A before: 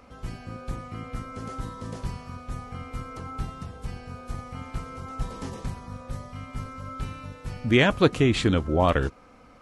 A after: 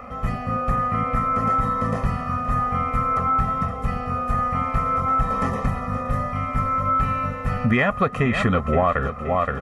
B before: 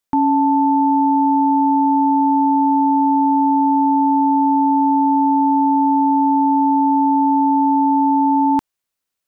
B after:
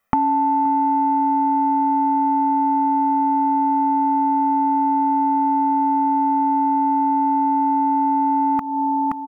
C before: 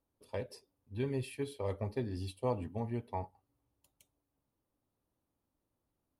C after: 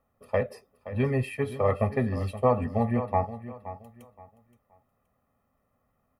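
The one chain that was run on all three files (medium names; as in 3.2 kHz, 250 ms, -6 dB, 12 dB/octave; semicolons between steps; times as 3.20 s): comb 1.6 ms, depth 91%; dynamic bell 1.2 kHz, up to +3 dB, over -39 dBFS, Q 1.2; feedback delay 523 ms, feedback 27%, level -14 dB; in parallel at -3.5 dB: saturation -13 dBFS; on the sum: graphic EQ 250/1000/2000/4000/8000 Hz +11/+10/+8/-9/-6 dB; compression 10:1, threshold -16 dBFS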